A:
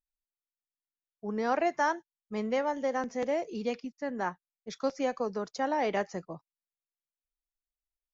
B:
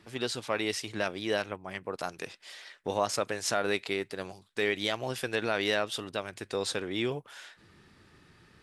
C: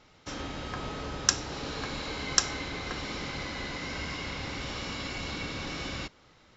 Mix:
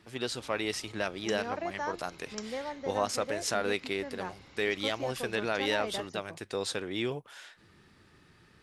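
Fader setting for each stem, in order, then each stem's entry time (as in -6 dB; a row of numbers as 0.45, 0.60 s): -8.0, -1.5, -19.0 dB; 0.00, 0.00, 0.00 s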